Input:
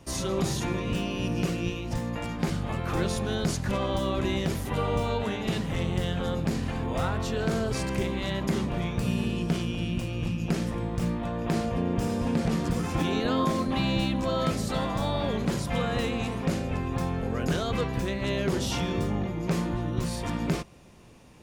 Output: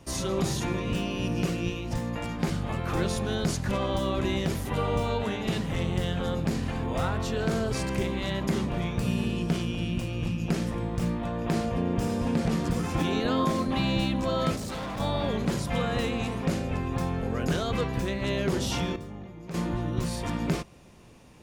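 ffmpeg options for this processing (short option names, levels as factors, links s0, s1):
-filter_complex "[0:a]asettb=1/sr,asplit=3[s0][s1][s2];[s0]atrim=end=14.564[s3];[s1]atrim=start=14.56:end=15,asetpts=PTS-STARTPTS,afade=t=in:d=0.004:c=qsin,afade=t=out:st=0.436:d=0.004:c=qsin,asoftclip=type=hard:threshold=0.0251[s4];[s2]atrim=start=14.996[s5];[s3][s4]acrossfade=d=0.004:c1=hsin:c2=qsin[s6];[s6][s5]acrossfade=d=0.004:c1=qsin:c2=hsin,asplit=3[s7][s8][s9];[s7]atrim=end=18.96,asetpts=PTS-STARTPTS,afade=t=out:st=18.79:d=0.17:c=log:silence=0.251189[s10];[s8]atrim=start=18.96:end=19.54,asetpts=PTS-STARTPTS,volume=0.251[s11];[s9]atrim=start=19.54,asetpts=PTS-STARTPTS,afade=t=in:d=0.17:c=log:silence=0.251189[s12];[s10][s11][s12]concat=n=3:v=0:a=1"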